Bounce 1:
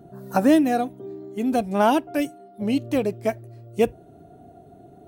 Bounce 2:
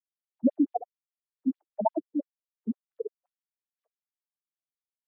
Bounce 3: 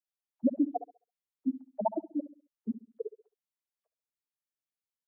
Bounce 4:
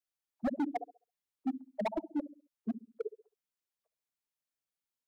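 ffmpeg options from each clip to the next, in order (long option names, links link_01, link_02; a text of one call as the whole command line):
ffmpeg -i in.wav -filter_complex "[0:a]asplit=6[link_01][link_02][link_03][link_04][link_05][link_06];[link_02]adelay=170,afreqshift=120,volume=-14dB[link_07];[link_03]adelay=340,afreqshift=240,volume=-19.8dB[link_08];[link_04]adelay=510,afreqshift=360,volume=-25.7dB[link_09];[link_05]adelay=680,afreqshift=480,volume=-31.5dB[link_10];[link_06]adelay=850,afreqshift=600,volume=-37.4dB[link_11];[link_01][link_07][link_08][link_09][link_10][link_11]amix=inputs=6:normalize=0,afftfilt=real='re*gte(hypot(re,im),0.562)':imag='im*gte(hypot(re,im),0.562)':win_size=1024:overlap=0.75,afftfilt=real='re*between(b*sr/1024,250*pow(4800/250,0.5+0.5*sin(2*PI*5.8*pts/sr))/1.41,250*pow(4800/250,0.5+0.5*sin(2*PI*5.8*pts/sr))*1.41)':imag='im*between(b*sr/1024,250*pow(4800/250,0.5+0.5*sin(2*PI*5.8*pts/sr))/1.41,250*pow(4800/250,0.5+0.5*sin(2*PI*5.8*pts/sr))*1.41)':win_size=1024:overlap=0.75" out.wav
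ffmpeg -i in.wav -filter_complex "[0:a]asplit=2[link_01][link_02];[link_02]adelay=67,lowpass=frequency=940:poles=1,volume=-13.5dB,asplit=2[link_03][link_04];[link_04]adelay=67,lowpass=frequency=940:poles=1,volume=0.37,asplit=2[link_05][link_06];[link_06]adelay=67,lowpass=frequency=940:poles=1,volume=0.37,asplit=2[link_07][link_08];[link_08]adelay=67,lowpass=frequency=940:poles=1,volume=0.37[link_09];[link_01][link_03][link_05][link_07][link_09]amix=inputs=5:normalize=0,volume=-3.5dB" out.wav
ffmpeg -i in.wav -af "volume=28dB,asoftclip=hard,volume=-28dB" out.wav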